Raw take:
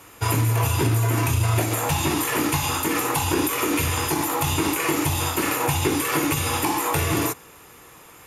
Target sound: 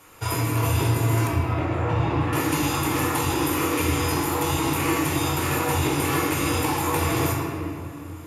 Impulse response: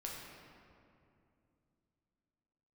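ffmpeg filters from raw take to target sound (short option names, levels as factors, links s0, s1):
-filter_complex "[0:a]asettb=1/sr,asplit=3[s0][s1][s2];[s0]atrim=end=1.274[s3];[s1]atrim=start=1.27:end=2.33,asetpts=PTS-STARTPTS,afade=t=in:d=0.004:c=qsin,afade=t=out:st=1.056:d=0.004:c=qsin,lowpass=2000[s4];[s2]atrim=start=2.326[s5];[s3][s4]acrossfade=d=0.004:c1=hsin:c2=qsin[s6];[s6][s5]acrossfade=d=0.004:c1=qsin:c2=hsin[s7];[1:a]atrim=start_sample=2205[s8];[s7][s8]afir=irnorm=-1:irlink=0"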